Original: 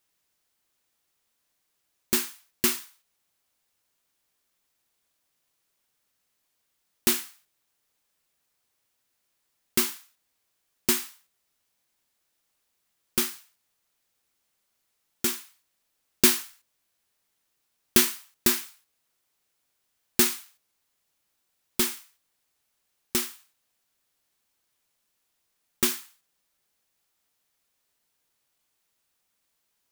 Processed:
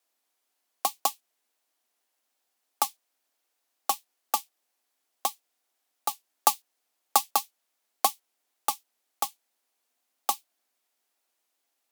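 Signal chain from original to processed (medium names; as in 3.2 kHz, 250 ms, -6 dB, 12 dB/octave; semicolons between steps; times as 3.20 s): peaking EQ 200 Hz +6.5 dB 0.69 oct; frequency shift +89 Hz; wide varispeed 2.51×; vibrato 15 Hz 73 cents; trim +1.5 dB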